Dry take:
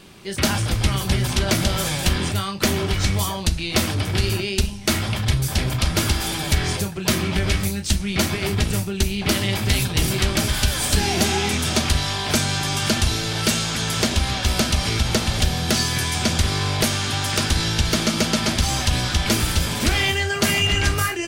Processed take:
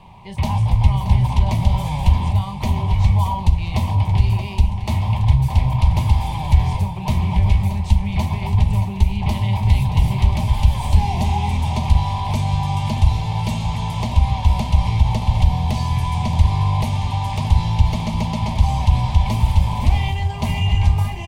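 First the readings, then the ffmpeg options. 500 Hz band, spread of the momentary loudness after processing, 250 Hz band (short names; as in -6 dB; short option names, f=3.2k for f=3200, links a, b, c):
-7.5 dB, 5 LU, -2.0 dB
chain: -filter_complex "[0:a]aecho=1:1:626|1252|1878|2504|3130|3756:0.237|0.138|0.0798|0.0463|0.0268|0.0156,acrossover=split=370|3000[a][b][c];[b]acompressor=threshold=-37dB:ratio=2[d];[a][d][c]amix=inputs=3:normalize=0,firequalizer=gain_entry='entry(100,0);entry(330,-20);entry(940,9);entry(1400,-29);entry(2100,-10);entry(5200,-24)':delay=0.05:min_phase=1,volume=7.5dB"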